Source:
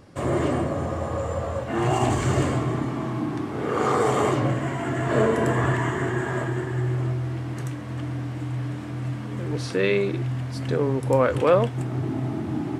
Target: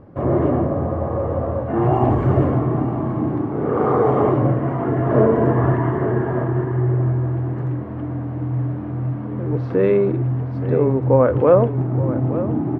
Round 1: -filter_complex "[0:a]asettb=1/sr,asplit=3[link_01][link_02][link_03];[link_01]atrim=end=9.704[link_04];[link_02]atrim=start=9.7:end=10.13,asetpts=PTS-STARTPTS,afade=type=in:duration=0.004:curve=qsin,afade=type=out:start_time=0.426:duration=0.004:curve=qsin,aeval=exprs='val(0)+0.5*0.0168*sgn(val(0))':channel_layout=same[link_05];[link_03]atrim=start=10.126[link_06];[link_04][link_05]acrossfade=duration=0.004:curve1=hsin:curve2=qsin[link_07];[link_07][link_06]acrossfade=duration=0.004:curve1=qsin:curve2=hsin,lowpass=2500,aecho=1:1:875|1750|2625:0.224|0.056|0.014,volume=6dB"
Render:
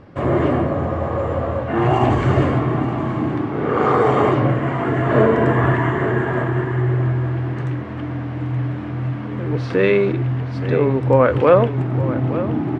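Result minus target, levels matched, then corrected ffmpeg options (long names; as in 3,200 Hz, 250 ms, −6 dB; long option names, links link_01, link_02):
2,000 Hz band +9.0 dB
-filter_complex "[0:a]asettb=1/sr,asplit=3[link_01][link_02][link_03];[link_01]atrim=end=9.704[link_04];[link_02]atrim=start=9.7:end=10.13,asetpts=PTS-STARTPTS,afade=type=in:duration=0.004:curve=qsin,afade=type=out:start_time=0.426:duration=0.004:curve=qsin,aeval=exprs='val(0)+0.5*0.0168*sgn(val(0))':channel_layout=same[link_05];[link_03]atrim=start=10.126[link_06];[link_04][link_05]acrossfade=duration=0.004:curve1=hsin:curve2=qsin[link_07];[link_07][link_06]acrossfade=duration=0.004:curve1=qsin:curve2=hsin,lowpass=950,aecho=1:1:875|1750|2625:0.224|0.056|0.014,volume=6dB"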